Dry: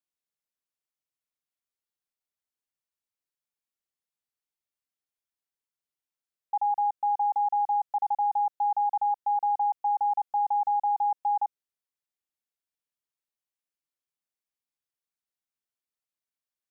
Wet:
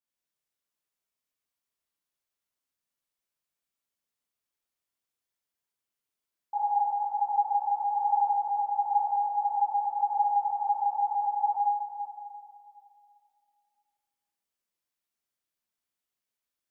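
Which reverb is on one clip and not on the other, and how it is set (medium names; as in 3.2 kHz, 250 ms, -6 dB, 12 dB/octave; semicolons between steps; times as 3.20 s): plate-style reverb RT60 2.5 s, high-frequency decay 0.9×, DRR -9 dB; trim -5.5 dB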